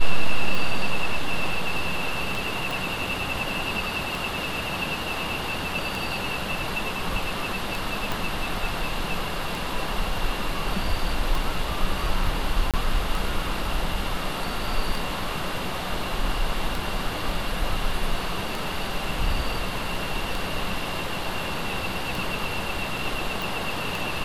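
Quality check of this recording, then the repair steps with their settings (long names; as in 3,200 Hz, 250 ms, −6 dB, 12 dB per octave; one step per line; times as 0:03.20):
scratch tick 33 1/3 rpm
0:02.71: click
0:08.12: click
0:12.71–0:12.74: drop-out 27 ms
0:23.42: click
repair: click removal
repair the gap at 0:12.71, 27 ms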